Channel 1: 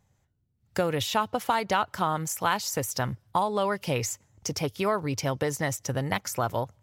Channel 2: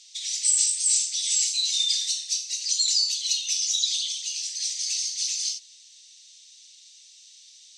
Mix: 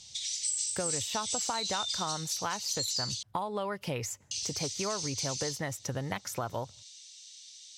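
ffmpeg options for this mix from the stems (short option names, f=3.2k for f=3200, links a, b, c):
-filter_complex "[0:a]highshelf=f=12k:g=-6.5,volume=1.5dB[a];[1:a]bandreject=f=2.6k:w=28,volume=0dB,asplit=3[b][c][d];[b]atrim=end=3.23,asetpts=PTS-STARTPTS,afade=t=out:st=3.226:d=0.004:c=hsin[e];[c]atrim=start=3.23:end=4.31,asetpts=PTS-STARTPTS,volume=0[f];[d]atrim=start=4.31,asetpts=PTS-STARTPTS,afade=t=in:d=0.004:c=hsin[g];[e][f][g]concat=n=3:v=0:a=1[h];[a][h]amix=inputs=2:normalize=0,acompressor=threshold=-35dB:ratio=2.5"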